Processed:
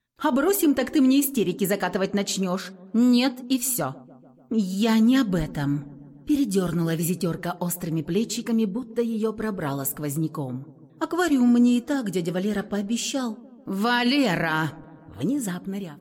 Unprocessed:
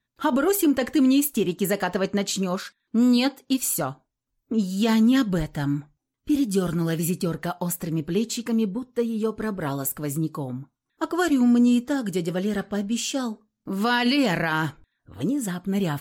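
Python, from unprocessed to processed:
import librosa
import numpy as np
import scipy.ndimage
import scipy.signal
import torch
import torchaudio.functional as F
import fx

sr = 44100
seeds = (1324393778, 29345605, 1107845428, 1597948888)

y = fx.fade_out_tail(x, sr, length_s=0.52)
y = fx.echo_wet_lowpass(y, sr, ms=146, feedback_pct=69, hz=740.0, wet_db=-19.5)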